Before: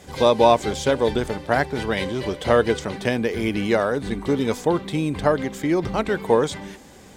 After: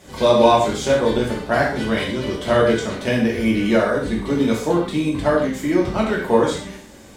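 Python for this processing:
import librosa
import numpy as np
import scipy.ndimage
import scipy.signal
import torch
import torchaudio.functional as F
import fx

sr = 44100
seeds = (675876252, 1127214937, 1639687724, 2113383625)

y = fx.rev_gated(x, sr, seeds[0], gate_ms=180, shape='falling', drr_db=-4.0)
y = y * 10.0 ** (-3.0 / 20.0)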